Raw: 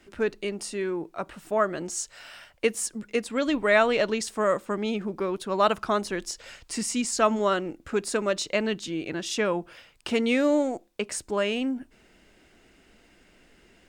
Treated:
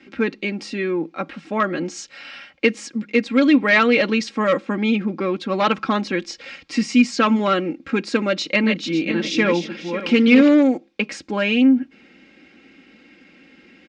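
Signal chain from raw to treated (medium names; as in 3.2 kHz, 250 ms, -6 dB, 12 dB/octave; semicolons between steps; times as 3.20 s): 8.36–10.54 s: backward echo that repeats 273 ms, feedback 45%, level -7 dB; comb 3.7 ms, depth 67%; hard clipper -14.5 dBFS, distortion -18 dB; cabinet simulation 130–5200 Hz, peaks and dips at 160 Hz +9 dB, 260 Hz +5 dB, 380 Hz +4 dB, 630 Hz -5 dB, 970 Hz -4 dB, 2.3 kHz +7 dB; trim +5 dB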